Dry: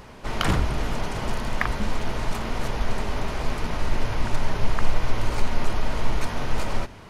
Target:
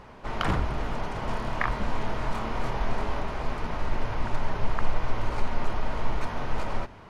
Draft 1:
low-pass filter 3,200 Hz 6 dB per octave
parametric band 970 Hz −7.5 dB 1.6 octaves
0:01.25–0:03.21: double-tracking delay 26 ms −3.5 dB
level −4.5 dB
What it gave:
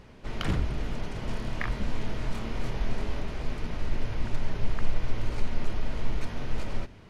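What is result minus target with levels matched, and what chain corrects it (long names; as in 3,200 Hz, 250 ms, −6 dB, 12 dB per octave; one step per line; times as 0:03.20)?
1,000 Hz band −7.5 dB
low-pass filter 3,200 Hz 6 dB per octave
parametric band 970 Hz +4 dB 1.6 octaves
0:01.25–0:03.21: double-tracking delay 26 ms −3.5 dB
level −4.5 dB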